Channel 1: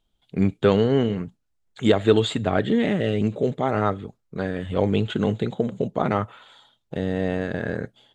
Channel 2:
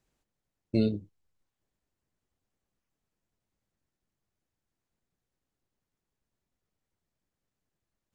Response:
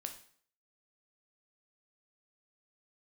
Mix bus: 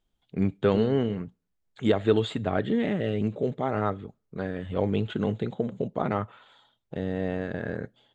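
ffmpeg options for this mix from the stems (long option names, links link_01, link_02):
-filter_complex "[0:a]lowpass=frequency=3300:poles=1,volume=-5dB,asplit=2[link_01][link_02];[link_02]volume=-24dB[link_03];[1:a]volume=-8.5dB[link_04];[2:a]atrim=start_sample=2205[link_05];[link_03][link_05]afir=irnorm=-1:irlink=0[link_06];[link_01][link_04][link_06]amix=inputs=3:normalize=0"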